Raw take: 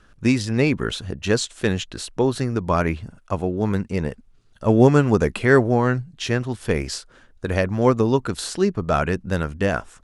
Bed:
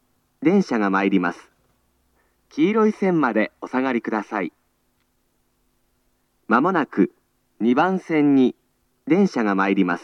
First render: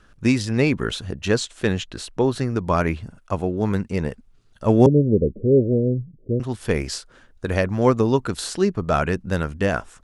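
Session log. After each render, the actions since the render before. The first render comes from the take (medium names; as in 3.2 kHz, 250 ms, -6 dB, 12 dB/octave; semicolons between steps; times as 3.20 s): 1.28–2.56 s: treble shelf 5.7 kHz -4.5 dB; 4.86–6.40 s: steep low-pass 560 Hz 72 dB/octave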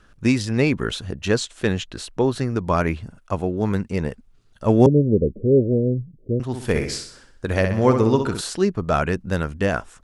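6.47–8.41 s: flutter echo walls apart 10.9 m, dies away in 0.55 s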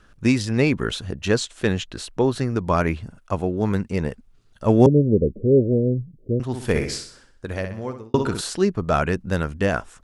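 6.83–8.14 s: fade out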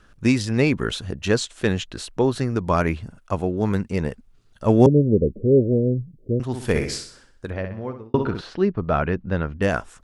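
7.50–9.62 s: distance through air 280 m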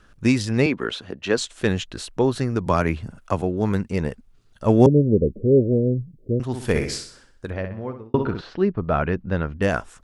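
0.66–1.38 s: three-band isolator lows -15 dB, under 210 Hz, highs -13 dB, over 4.8 kHz; 2.66–3.42 s: three bands compressed up and down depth 40%; 7.66–9.01 s: distance through air 95 m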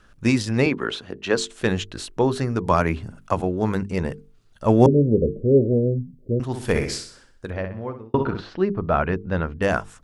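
hum notches 50/100/150/200/250/300/350/400/450 Hz; dynamic bell 970 Hz, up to +3 dB, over -35 dBFS, Q 1.3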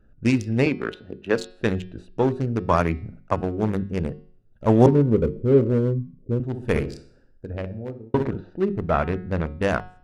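local Wiener filter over 41 samples; de-hum 182.6 Hz, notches 30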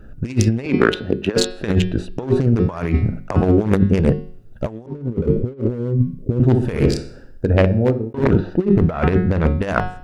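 compressor with a negative ratio -27 dBFS, ratio -0.5; loudness maximiser +11 dB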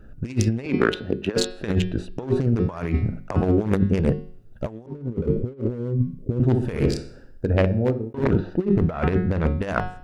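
trim -5 dB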